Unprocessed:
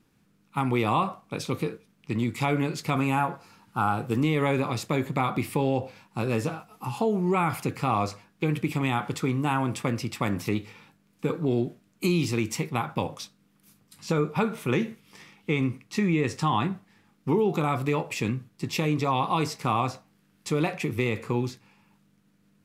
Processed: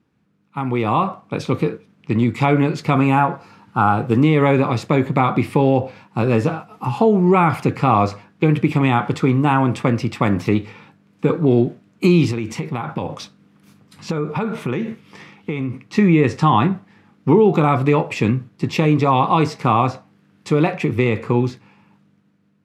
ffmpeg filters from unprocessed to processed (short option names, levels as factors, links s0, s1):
-filter_complex "[0:a]asettb=1/sr,asplit=3[s0][s1][s2];[s0]atrim=end=12.314[s3];[s1]atrim=start=12.31:end=15.84,asetpts=PTS-STARTPTS,afade=t=in:d=0.004:c=qsin,afade=t=out:st=3.526:d=0.004:c=qsin,acompressor=threshold=0.0282:ratio=4:attack=3.2:release=140:knee=1:detection=peak[s4];[s2]atrim=start=15.836[s5];[s3][s4]acrossfade=d=0.004:c1=hsin:c2=qsin[s6];[s6][s5]acrossfade=d=0.004:c1=qsin:c2=hsin,highpass=55,aemphasis=mode=reproduction:type=75fm,dynaudnorm=f=200:g=9:m=3.76"